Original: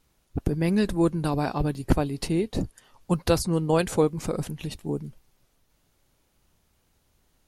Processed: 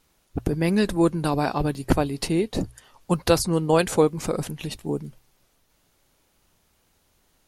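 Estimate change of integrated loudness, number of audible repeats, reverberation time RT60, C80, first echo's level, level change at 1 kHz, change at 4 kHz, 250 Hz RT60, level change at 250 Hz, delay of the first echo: +2.5 dB, none, none, none, none, +4.0 dB, +4.5 dB, none, +2.0 dB, none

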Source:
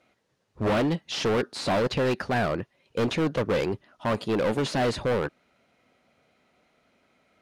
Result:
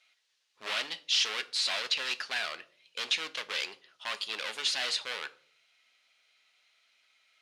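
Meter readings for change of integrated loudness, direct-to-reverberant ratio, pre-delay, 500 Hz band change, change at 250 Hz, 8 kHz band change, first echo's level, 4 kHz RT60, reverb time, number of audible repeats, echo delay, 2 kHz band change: -4.5 dB, 11.0 dB, 5 ms, -20.5 dB, -29.0 dB, +3.5 dB, none, 0.35 s, 0.50 s, none, none, -1.0 dB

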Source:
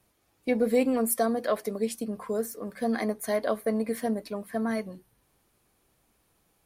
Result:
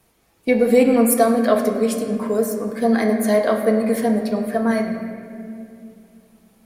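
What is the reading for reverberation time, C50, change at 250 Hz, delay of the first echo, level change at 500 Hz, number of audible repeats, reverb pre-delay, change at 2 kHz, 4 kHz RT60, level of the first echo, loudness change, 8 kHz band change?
2.5 s, 5.5 dB, +11.0 dB, none, +10.5 dB, none, 4 ms, +9.5 dB, 1.5 s, none, +10.0 dB, +8.0 dB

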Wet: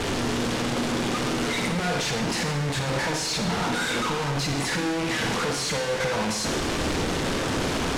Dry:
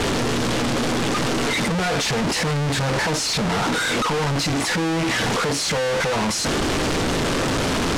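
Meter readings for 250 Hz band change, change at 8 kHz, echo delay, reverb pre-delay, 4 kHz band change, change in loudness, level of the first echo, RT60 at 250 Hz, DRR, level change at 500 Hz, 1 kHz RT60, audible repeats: -4.0 dB, -4.5 dB, none, 33 ms, -4.5 dB, -4.5 dB, none, 0.95 s, 3.5 dB, -4.5 dB, 1.0 s, none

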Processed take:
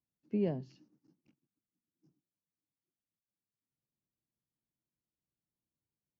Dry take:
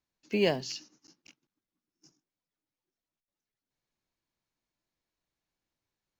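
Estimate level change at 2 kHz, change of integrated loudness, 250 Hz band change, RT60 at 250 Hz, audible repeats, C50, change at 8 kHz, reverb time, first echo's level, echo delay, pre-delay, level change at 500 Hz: -22.5 dB, -5.0 dB, -2.0 dB, none, none, none, n/a, none, none, none, none, -8.0 dB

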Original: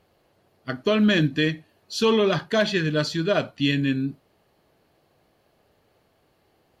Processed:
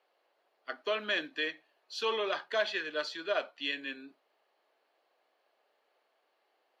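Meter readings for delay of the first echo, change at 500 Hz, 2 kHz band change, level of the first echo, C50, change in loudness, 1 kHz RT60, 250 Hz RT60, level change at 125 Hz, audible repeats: none, -11.0 dB, -6.5 dB, none, none, -11.0 dB, none, none, under -35 dB, none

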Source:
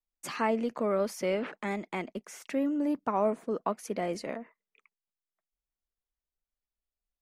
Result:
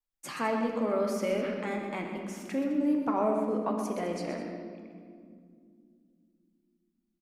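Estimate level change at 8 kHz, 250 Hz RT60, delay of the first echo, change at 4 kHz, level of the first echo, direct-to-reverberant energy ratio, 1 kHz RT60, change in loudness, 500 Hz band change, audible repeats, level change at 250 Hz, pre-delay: -1.0 dB, 4.1 s, 0.125 s, -0.5 dB, -8.5 dB, 1.0 dB, 1.9 s, +1.0 dB, +0.5 dB, 2, +2.5 dB, 4 ms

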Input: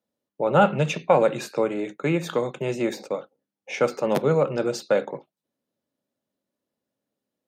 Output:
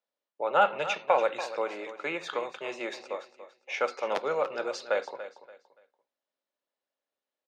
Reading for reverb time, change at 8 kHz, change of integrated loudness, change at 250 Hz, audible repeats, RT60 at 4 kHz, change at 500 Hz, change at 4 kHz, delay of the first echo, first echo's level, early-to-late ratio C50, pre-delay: none, -8.5 dB, -6.5 dB, -17.0 dB, 2, none, -7.5 dB, -2.5 dB, 0.287 s, -13.0 dB, none, none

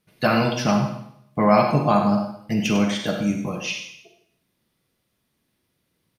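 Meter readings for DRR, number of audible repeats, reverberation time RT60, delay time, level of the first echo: 2.5 dB, 1, 0.70 s, 98 ms, -9.5 dB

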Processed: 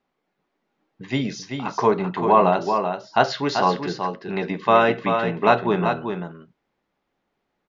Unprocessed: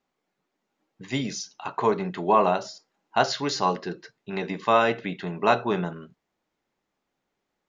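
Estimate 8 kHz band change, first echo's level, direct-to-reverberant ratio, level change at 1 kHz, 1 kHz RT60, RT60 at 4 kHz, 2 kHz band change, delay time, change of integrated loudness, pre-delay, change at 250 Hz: n/a, -6.5 dB, none, +4.5 dB, none, none, +4.0 dB, 0.386 s, +4.0 dB, none, +5.0 dB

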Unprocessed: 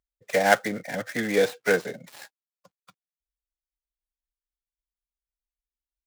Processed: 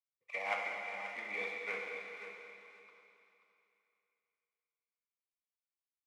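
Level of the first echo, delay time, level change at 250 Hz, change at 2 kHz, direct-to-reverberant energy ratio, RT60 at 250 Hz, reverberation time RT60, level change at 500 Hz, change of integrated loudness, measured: -10.5 dB, 0.534 s, -28.0 dB, -11.5 dB, -1.5 dB, 2.9 s, 2.8 s, -20.5 dB, -15.0 dB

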